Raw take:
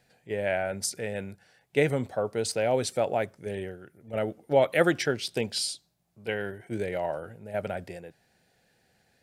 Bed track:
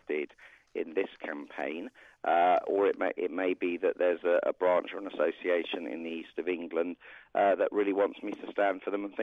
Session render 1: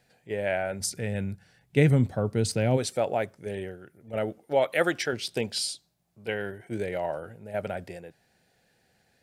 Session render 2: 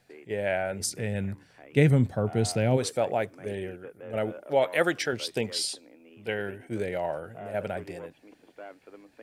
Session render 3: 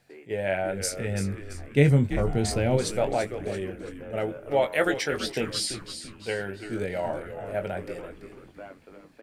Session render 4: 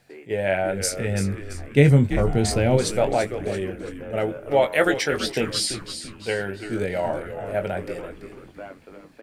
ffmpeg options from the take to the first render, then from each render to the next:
ffmpeg -i in.wav -filter_complex "[0:a]asplit=3[link_01][link_02][link_03];[link_01]afade=type=out:start_time=0.79:duration=0.02[link_04];[link_02]asubboost=boost=7.5:cutoff=250,afade=type=in:start_time=0.79:duration=0.02,afade=type=out:start_time=2.76:duration=0.02[link_05];[link_03]afade=type=in:start_time=2.76:duration=0.02[link_06];[link_04][link_05][link_06]amix=inputs=3:normalize=0,asettb=1/sr,asplit=3[link_07][link_08][link_09];[link_07]atrim=end=4.384[link_10];[link_08]atrim=start=4.38:end=5.13,asetpts=PTS-STARTPTS,afade=type=in:duration=0.004:curve=qsin,afade=type=out:start_time=0.746:duration=0.004:curve=qsin,lowshelf=frequency=300:gain=-8.5[link_11];[link_09]atrim=start=5.126[link_12];[link_10][link_11]acrossfade=duration=0.004:curve1=hsin:curve2=qsin[link_13];[link_13][link_12]acrossfade=duration=0.004:curve1=qsin:curve2=hsin" out.wav
ffmpeg -i in.wav -i bed.wav -filter_complex "[1:a]volume=-16.5dB[link_01];[0:a][link_01]amix=inputs=2:normalize=0" out.wav
ffmpeg -i in.wav -filter_complex "[0:a]asplit=2[link_01][link_02];[link_02]adelay=21,volume=-7.5dB[link_03];[link_01][link_03]amix=inputs=2:normalize=0,asplit=2[link_04][link_05];[link_05]asplit=4[link_06][link_07][link_08][link_09];[link_06]adelay=336,afreqshift=-110,volume=-10dB[link_10];[link_07]adelay=672,afreqshift=-220,volume=-17.5dB[link_11];[link_08]adelay=1008,afreqshift=-330,volume=-25.1dB[link_12];[link_09]adelay=1344,afreqshift=-440,volume=-32.6dB[link_13];[link_10][link_11][link_12][link_13]amix=inputs=4:normalize=0[link_14];[link_04][link_14]amix=inputs=2:normalize=0" out.wav
ffmpeg -i in.wav -af "volume=4.5dB,alimiter=limit=-2dB:level=0:latency=1" out.wav

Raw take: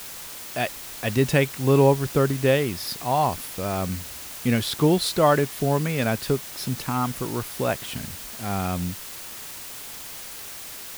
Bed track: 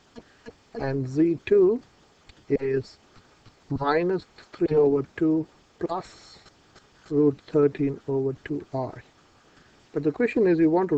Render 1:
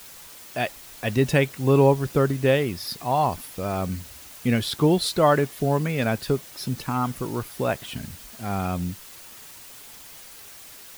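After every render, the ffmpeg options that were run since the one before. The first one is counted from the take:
ffmpeg -i in.wav -af "afftdn=noise_reduction=7:noise_floor=-38" out.wav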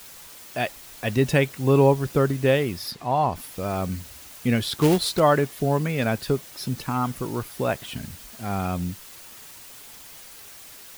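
ffmpeg -i in.wav -filter_complex "[0:a]asplit=3[link_01][link_02][link_03];[link_01]afade=type=out:start_time=2.9:duration=0.02[link_04];[link_02]aemphasis=mode=reproduction:type=50kf,afade=type=in:start_time=2.9:duration=0.02,afade=type=out:start_time=3.35:duration=0.02[link_05];[link_03]afade=type=in:start_time=3.35:duration=0.02[link_06];[link_04][link_05][link_06]amix=inputs=3:normalize=0,asettb=1/sr,asplit=3[link_07][link_08][link_09];[link_07]atrim=end=4.784[link_10];[link_08]atrim=start=4.78:end=5.2,asetpts=PTS-STARTPTS,afade=type=in:duration=0.004:curve=qsin,afade=type=out:start_time=0.416:duration=0.004:curve=qsin,acrusher=bits=3:mode=log:mix=0:aa=0.000001[link_11];[link_09]atrim=start=5.196[link_12];[link_10][link_11]acrossfade=duration=0.004:curve1=hsin:curve2=qsin[link_13];[link_13][link_12]acrossfade=duration=0.004:curve1=qsin:curve2=hsin" out.wav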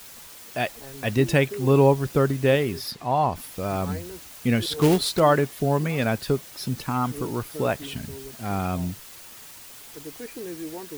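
ffmpeg -i in.wav -i bed.wav -filter_complex "[1:a]volume=-15.5dB[link_01];[0:a][link_01]amix=inputs=2:normalize=0" out.wav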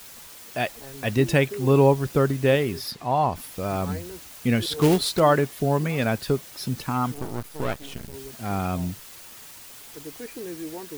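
ffmpeg -i in.wav -filter_complex "[0:a]asettb=1/sr,asplit=3[link_01][link_02][link_03];[link_01]atrim=end=7.144[link_04];[link_02]atrim=start=7.14:end=8.14,asetpts=PTS-STARTPTS,afade=type=in:duration=0.004:curve=qsin,afade=type=out:start_time=0.996:duration=0.004:curve=qsin,aeval=exprs='max(val(0),0)':channel_layout=same[link_05];[link_03]atrim=start=8.136[link_06];[link_04][link_05]acrossfade=duration=0.004:curve1=hsin:curve2=qsin[link_07];[link_07][link_06]acrossfade=duration=0.004:curve1=qsin:curve2=hsin" out.wav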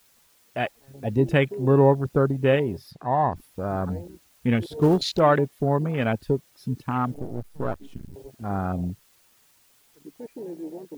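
ffmpeg -i in.wav -af "afwtdn=0.0355" out.wav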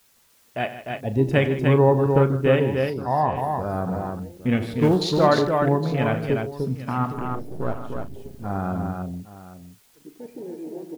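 ffmpeg -i in.wav -filter_complex "[0:a]asplit=2[link_01][link_02];[link_02]adelay=38,volume=-12.5dB[link_03];[link_01][link_03]amix=inputs=2:normalize=0,aecho=1:1:92|154|300|813:0.188|0.2|0.596|0.158" out.wav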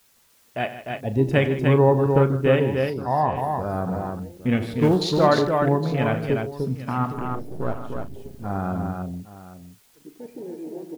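ffmpeg -i in.wav -af anull out.wav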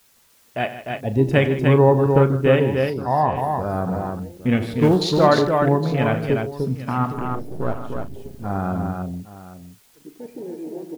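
ffmpeg -i in.wav -af "volume=2.5dB" out.wav

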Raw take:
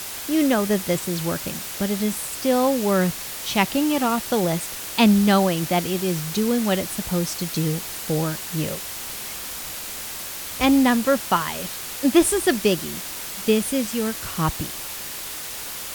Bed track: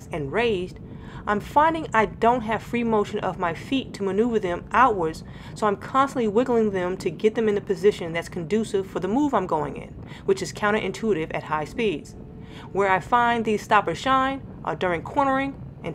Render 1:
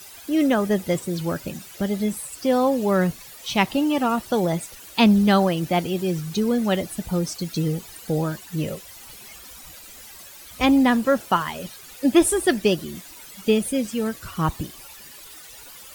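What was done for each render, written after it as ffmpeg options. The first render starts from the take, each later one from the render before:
ffmpeg -i in.wav -af "afftdn=noise_reduction=14:noise_floor=-33" out.wav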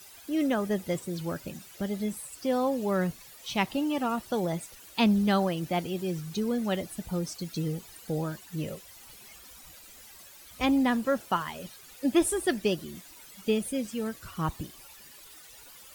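ffmpeg -i in.wav -af "volume=-7.5dB" out.wav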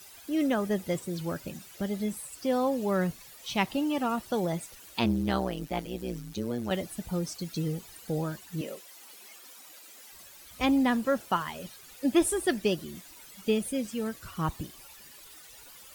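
ffmpeg -i in.wav -filter_complex "[0:a]asettb=1/sr,asplit=3[link_01][link_02][link_03];[link_01]atrim=end=4.994[link_04];[link_02]atrim=start=4.99:end=6.71,asetpts=PTS-STARTPTS,afade=type=in:duration=0.004:curve=qsin,afade=type=out:start_time=1.716:duration=0.004:curve=qsin,tremolo=f=120:d=0.889[link_05];[link_03]atrim=start=6.706[link_06];[link_04][link_05]acrossfade=duration=0.004:curve1=hsin:curve2=qsin[link_07];[link_07][link_06]acrossfade=duration=0.004:curve1=qsin:curve2=hsin,asettb=1/sr,asplit=3[link_08][link_09][link_10];[link_08]atrim=end=8.614[link_11];[link_09]atrim=start=8.61:end=10.12,asetpts=PTS-STARTPTS,afade=type=in:duration=0.004:curve=qsin,afade=type=out:start_time=1.506:duration=0.004:curve=qsin,highpass=frequency=250:width=0.5412,highpass=frequency=250:width=1.3066[link_12];[link_10]atrim=start=10.116[link_13];[link_11][link_12]acrossfade=duration=0.004:curve1=hsin:curve2=qsin[link_14];[link_14][link_13]acrossfade=duration=0.004:curve1=qsin:curve2=hsin" out.wav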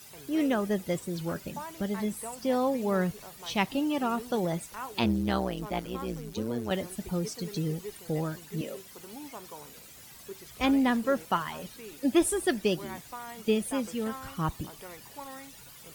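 ffmpeg -i in.wav -i bed.wav -filter_complex "[1:a]volume=-22.5dB[link_01];[0:a][link_01]amix=inputs=2:normalize=0" out.wav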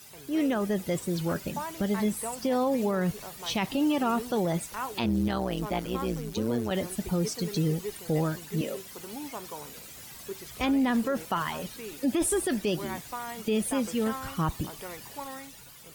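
ffmpeg -i in.wav -af "dynaudnorm=framelen=120:gausssize=11:maxgain=4.5dB,alimiter=limit=-18.5dB:level=0:latency=1:release=26" out.wav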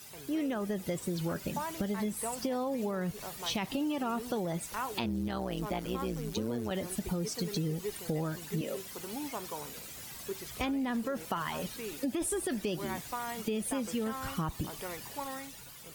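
ffmpeg -i in.wav -af "acompressor=threshold=-30dB:ratio=6" out.wav

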